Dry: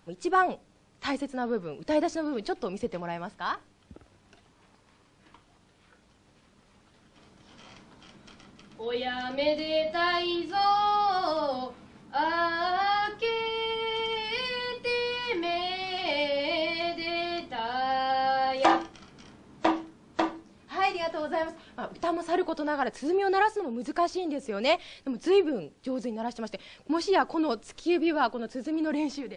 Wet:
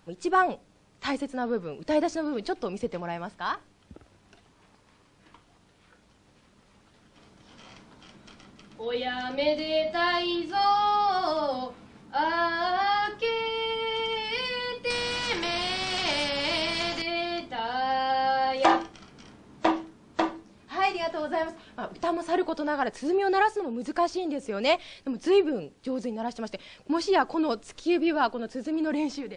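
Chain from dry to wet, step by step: 14.90–17.02 s: spectrum-flattening compressor 2:1; trim +1 dB

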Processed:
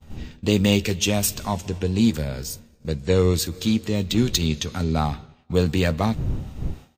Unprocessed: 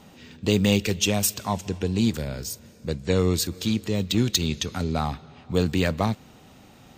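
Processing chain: wind noise 110 Hz -37 dBFS; expander -36 dBFS; doubling 13 ms -12 dB; harmonic-percussive split harmonic +3 dB

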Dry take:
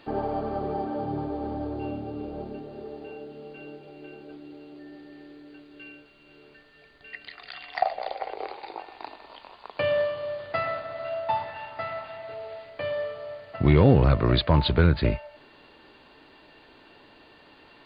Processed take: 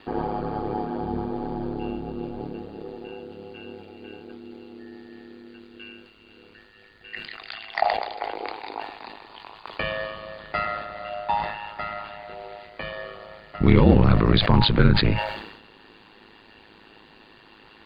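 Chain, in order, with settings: peaking EQ 590 Hz -11 dB 0.28 oct; ring modulator 53 Hz; decay stretcher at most 61 dB/s; trim +5.5 dB

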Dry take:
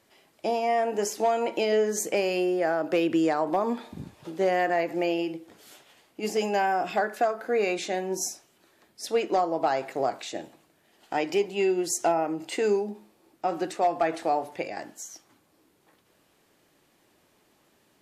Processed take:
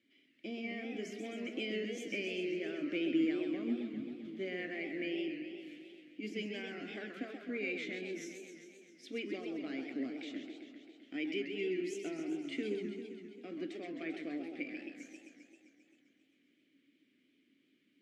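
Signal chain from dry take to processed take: vowel filter i; modulated delay 132 ms, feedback 71%, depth 205 cents, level -7 dB; trim +2.5 dB

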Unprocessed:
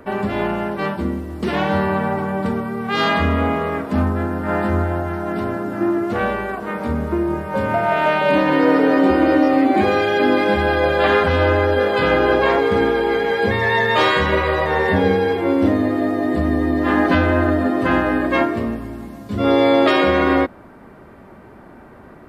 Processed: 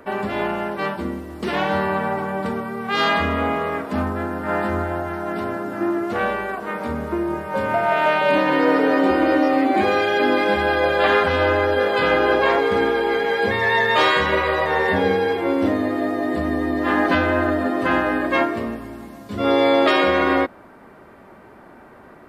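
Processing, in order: bass shelf 250 Hz -9 dB

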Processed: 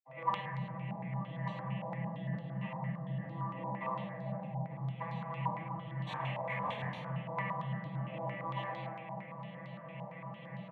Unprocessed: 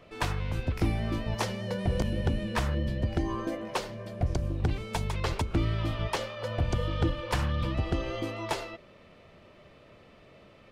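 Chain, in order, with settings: vocoder on a broken chord major triad, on C3, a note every 95 ms; comb 6.1 ms, depth 79%; compression 8:1, threshold -46 dBFS, peak gain reduction 26.5 dB; multi-tap echo 52/54/101 ms -13/-18/-8.5 dB; 5.90–6.92 s: integer overflow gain 40 dB; high-pass 170 Hz 12 dB/octave; static phaser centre 1.4 kHz, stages 6; reverberation RT60 1.6 s, pre-delay 47 ms; step-sequenced low-pass 8.8 Hz 910–4200 Hz; trim +10.5 dB

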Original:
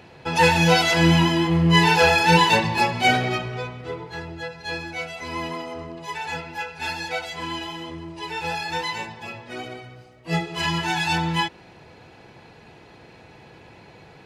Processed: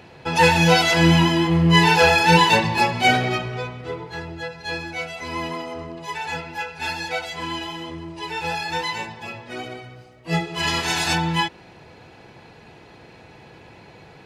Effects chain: 10.66–11.13 s: spectral peaks clipped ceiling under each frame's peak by 18 dB; trim +1.5 dB

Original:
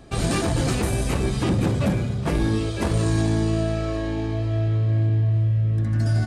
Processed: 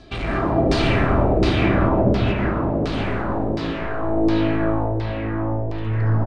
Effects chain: comb 3 ms, depth 34%; hard clipper -24.5 dBFS, distortion -8 dB; 1.89–4.03 s: harmonic-percussive split harmonic -15 dB; reverberation RT60 5.0 s, pre-delay 80 ms, DRR -8 dB; LFO low-pass saw down 1.4 Hz 490–5000 Hz

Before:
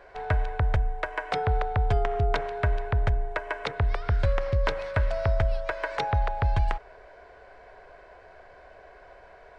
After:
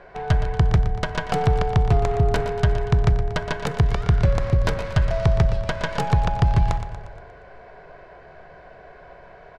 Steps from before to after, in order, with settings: tracing distortion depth 0.43 ms; peaking EQ 160 Hz +13.5 dB 0.87 oct; in parallel at -5 dB: sine folder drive 5 dB, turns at -7.5 dBFS; on the sum: distance through air 67 m; feedback delay 118 ms, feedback 54%, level -11 dB; on a send at -17 dB: reverberation RT60 0.60 s, pre-delay 3 ms; on the sum: trim -4 dB

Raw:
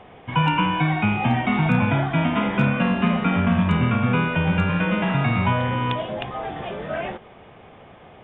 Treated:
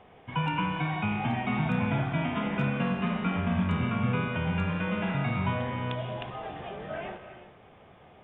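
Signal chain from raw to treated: gated-style reverb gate 400 ms flat, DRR 7 dB; trim -9 dB

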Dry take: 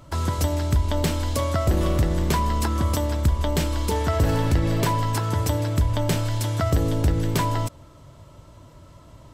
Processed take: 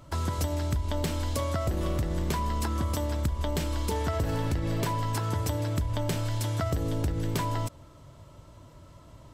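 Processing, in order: compression, threshold -21 dBFS, peak gain reduction 7 dB; trim -3.5 dB

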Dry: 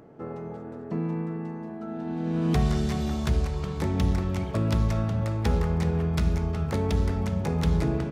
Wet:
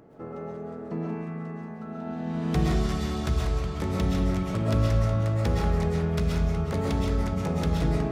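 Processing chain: algorithmic reverb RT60 0.5 s, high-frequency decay 0.7×, pre-delay 90 ms, DRR -1.5 dB; trim -2.5 dB

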